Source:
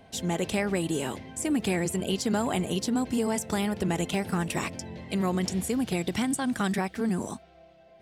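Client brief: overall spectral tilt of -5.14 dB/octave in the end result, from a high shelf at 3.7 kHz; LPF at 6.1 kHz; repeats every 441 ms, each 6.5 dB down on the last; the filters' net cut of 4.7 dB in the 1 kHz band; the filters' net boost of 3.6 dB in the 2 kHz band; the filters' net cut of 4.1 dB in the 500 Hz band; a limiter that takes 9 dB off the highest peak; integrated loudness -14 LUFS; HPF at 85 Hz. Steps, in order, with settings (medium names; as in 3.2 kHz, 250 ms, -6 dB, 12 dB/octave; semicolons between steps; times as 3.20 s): high-pass 85 Hz; low-pass 6.1 kHz; peaking EQ 500 Hz -4.5 dB; peaking EQ 1 kHz -6 dB; peaking EQ 2 kHz +7 dB; treble shelf 3.7 kHz -3 dB; peak limiter -23.5 dBFS; feedback delay 441 ms, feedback 47%, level -6.5 dB; trim +18 dB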